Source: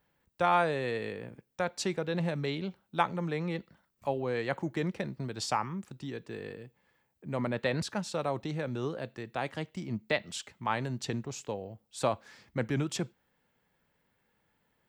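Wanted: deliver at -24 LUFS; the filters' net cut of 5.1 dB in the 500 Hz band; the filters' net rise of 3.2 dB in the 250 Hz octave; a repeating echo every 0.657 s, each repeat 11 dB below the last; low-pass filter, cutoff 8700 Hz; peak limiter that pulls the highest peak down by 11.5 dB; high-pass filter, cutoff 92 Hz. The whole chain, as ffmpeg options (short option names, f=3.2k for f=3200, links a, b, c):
-af "highpass=92,lowpass=8.7k,equalizer=f=250:t=o:g=7,equalizer=f=500:t=o:g=-8.5,alimiter=level_in=1dB:limit=-24dB:level=0:latency=1,volume=-1dB,aecho=1:1:657|1314|1971:0.282|0.0789|0.0221,volume=12.5dB"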